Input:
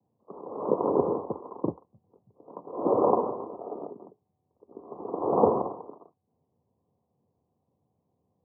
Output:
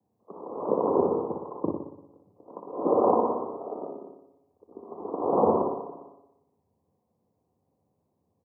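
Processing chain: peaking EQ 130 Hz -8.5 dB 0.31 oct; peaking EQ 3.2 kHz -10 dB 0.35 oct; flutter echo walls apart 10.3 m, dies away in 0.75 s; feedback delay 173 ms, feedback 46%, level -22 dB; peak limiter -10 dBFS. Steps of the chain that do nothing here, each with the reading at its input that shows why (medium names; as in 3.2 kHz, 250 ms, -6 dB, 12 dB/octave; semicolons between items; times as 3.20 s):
peaking EQ 3.2 kHz: input has nothing above 1.3 kHz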